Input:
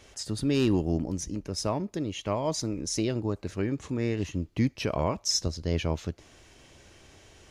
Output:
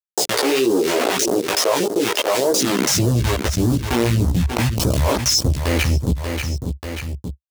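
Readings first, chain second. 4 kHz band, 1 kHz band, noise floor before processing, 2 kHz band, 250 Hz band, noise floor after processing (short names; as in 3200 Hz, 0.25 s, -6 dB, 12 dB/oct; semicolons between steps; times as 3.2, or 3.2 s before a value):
+13.0 dB, +13.0 dB, -57 dBFS, +16.5 dB, +8.0 dB, -56 dBFS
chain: level-crossing sampler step -28 dBFS; in parallel at -1 dB: limiter -26.5 dBFS, peak gain reduction 11 dB; on the sum: high-pass sweep 420 Hz -> 70 Hz, 2.52–3.15; phaser stages 2, 1.7 Hz, lowest notch 120–2300 Hz; soft clip -13.5 dBFS, distortion -23 dB; chorus voices 2, 0.38 Hz, delay 16 ms, depth 1.3 ms; on a send: feedback echo 0.587 s, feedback 23%, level -19.5 dB; on the sum: fast leveller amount 70%; gain +6.5 dB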